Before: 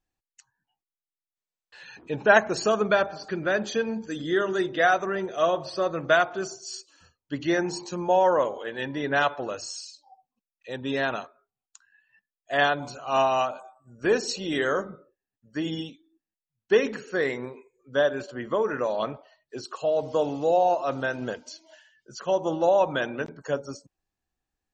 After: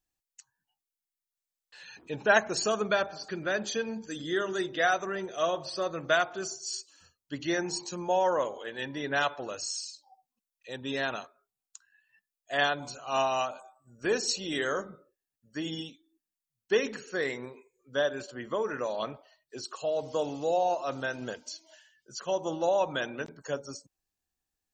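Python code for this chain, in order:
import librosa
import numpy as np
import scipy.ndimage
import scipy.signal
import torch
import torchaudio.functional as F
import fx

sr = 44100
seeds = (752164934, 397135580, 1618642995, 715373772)

y = fx.high_shelf(x, sr, hz=3700.0, db=11.0)
y = y * 10.0 ** (-6.0 / 20.0)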